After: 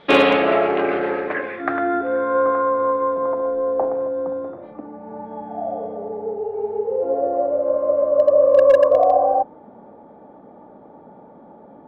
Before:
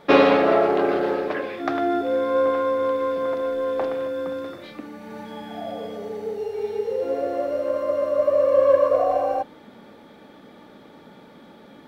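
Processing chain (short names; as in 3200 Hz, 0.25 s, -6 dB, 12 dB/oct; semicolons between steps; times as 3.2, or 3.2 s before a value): low-pass sweep 3300 Hz -> 800 Hz, 0.06–3.74; overloaded stage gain 6 dB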